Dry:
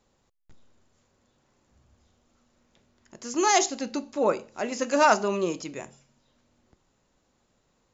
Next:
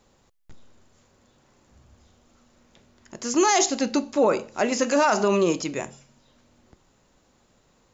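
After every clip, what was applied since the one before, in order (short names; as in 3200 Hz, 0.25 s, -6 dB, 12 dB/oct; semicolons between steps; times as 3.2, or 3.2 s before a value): limiter -18.5 dBFS, peak gain reduction 11 dB; gain +7.5 dB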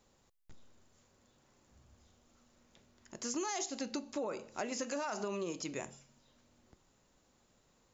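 high shelf 5000 Hz +4.5 dB; compressor 6:1, threshold -26 dBFS, peak gain reduction 10.5 dB; gain -9 dB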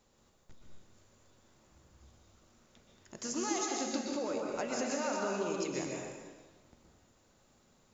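plate-style reverb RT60 1.4 s, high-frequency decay 0.8×, pre-delay 0.11 s, DRR -1 dB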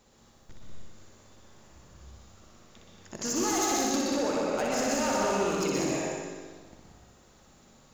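overloaded stage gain 32.5 dB; flutter echo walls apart 10.5 m, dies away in 0.95 s; gain +7 dB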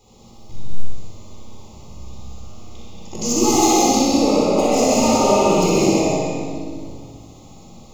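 Butterworth band-stop 1600 Hz, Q 1.4; shoebox room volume 1600 m³, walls mixed, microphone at 4 m; gain +5.5 dB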